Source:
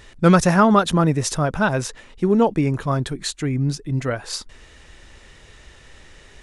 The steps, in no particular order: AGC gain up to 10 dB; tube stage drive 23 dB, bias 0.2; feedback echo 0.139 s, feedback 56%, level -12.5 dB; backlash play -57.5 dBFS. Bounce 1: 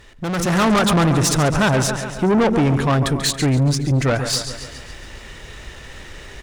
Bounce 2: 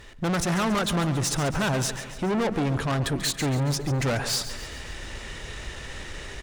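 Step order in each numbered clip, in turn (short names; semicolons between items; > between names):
feedback echo > tube stage > backlash > AGC; AGC > tube stage > feedback echo > backlash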